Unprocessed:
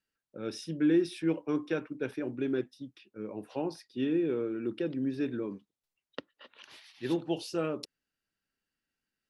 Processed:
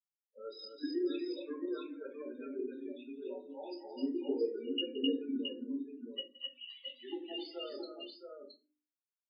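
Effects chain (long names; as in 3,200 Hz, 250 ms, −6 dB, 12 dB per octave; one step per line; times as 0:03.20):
spectral dynamics exaggerated over time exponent 2
mains-hum notches 50/100/150/200/250/300/350 Hz
reversed playback
downward compressor 10 to 1, threshold −43 dBFS, peak gain reduction 19.5 dB
reversed playback
brickwall limiter −39.5 dBFS, peak gain reduction 8 dB
output level in coarse steps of 15 dB
linear-phase brick-wall band-pass 240–5,100 Hz
spectral peaks only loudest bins 8
parametric band 2,900 Hz +15 dB 0.25 octaves
multi-tap delay 170/259/260/670 ms −18.5/−11.5/−4.5/−5 dB
rectangular room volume 120 cubic metres, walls furnished, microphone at 1.6 metres
level +13 dB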